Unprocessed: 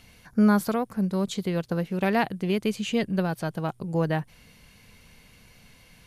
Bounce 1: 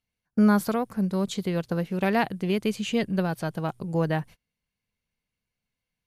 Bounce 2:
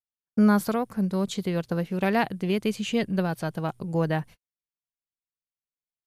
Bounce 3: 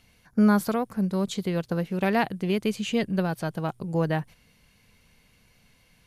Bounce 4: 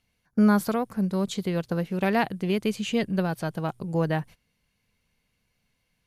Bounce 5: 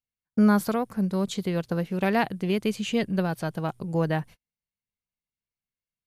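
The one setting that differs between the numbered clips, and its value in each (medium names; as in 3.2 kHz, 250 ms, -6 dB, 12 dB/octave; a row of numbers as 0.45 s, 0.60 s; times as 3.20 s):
gate, range: -32 dB, -58 dB, -7 dB, -20 dB, -45 dB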